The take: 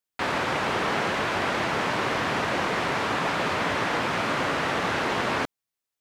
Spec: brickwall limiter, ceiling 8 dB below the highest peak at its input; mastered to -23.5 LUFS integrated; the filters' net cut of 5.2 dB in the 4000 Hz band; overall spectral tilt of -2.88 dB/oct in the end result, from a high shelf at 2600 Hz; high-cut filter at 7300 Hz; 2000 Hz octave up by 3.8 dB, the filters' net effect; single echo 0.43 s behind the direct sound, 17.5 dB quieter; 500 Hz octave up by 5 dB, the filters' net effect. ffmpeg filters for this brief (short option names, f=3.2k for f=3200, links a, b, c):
-af "lowpass=7.3k,equalizer=f=500:t=o:g=6,equalizer=f=2k:t=o:g=7.5,highshelf=f=2.6k:g=-3,equalizer=f=4k:t=o:g=-8.5,alimiter=limit=-18.5dB:level=0:latency=1,aecho=1:1:430:0.133,volume=3.5dB"